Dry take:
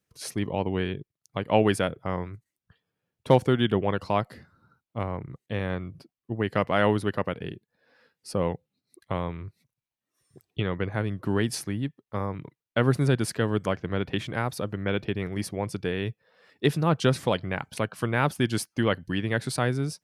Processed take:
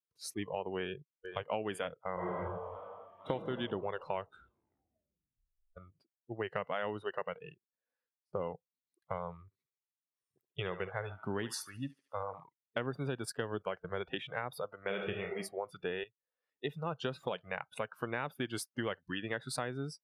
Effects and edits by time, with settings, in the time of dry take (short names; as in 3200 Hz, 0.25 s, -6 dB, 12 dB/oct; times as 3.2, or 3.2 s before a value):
0.78–1.46 echo throw 0.46 s, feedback 60%, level -7 dB
2.14–3.3 reverb throw, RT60 2.4 s, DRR -7.5 dB
4.05 tape stop 1.72 s
7.04–8.33 fade out equal-power
9.44–12.44 thinning echo 72 ms, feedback 68%, high-pass 490 Hz, level -11 dB
13.25–13.95 gate -37 dBFS, range -8 dB
14.8–15.38 reverb throw, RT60 0.83 s, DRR 2 dB
16.04–17.63 fade in, from -14 dB
whole clip: spectral noise reduction 20 dB; tone controls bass -7 dB, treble -2 dB; compressor 8:1, threshold -28 dBFS; gain -4 dB